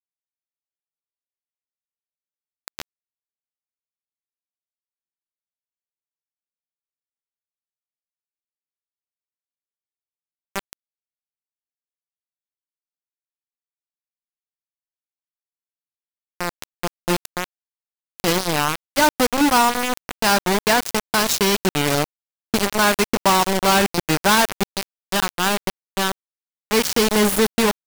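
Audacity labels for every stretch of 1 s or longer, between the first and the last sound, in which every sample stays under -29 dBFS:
2.820000	10.560000	silence
10.730000	16.410000	silence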